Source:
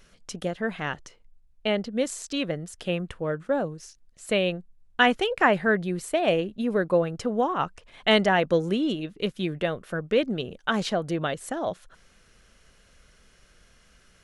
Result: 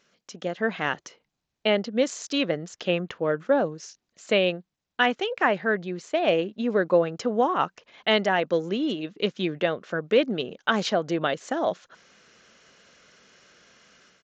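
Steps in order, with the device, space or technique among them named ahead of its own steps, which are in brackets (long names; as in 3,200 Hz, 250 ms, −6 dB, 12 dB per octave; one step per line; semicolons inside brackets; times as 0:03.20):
Bluetooth headset (high-pass filter 210 Hz 12 dB per octave; automatic gain control gain up to 11 dB; downsampling to 16,000 Hz; level −6 dB; SBC 64 kbit/s 16,000 Hz)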